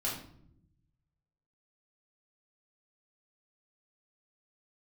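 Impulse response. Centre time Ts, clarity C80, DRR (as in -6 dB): 38 ms, 9.0 dB, -5.5 dB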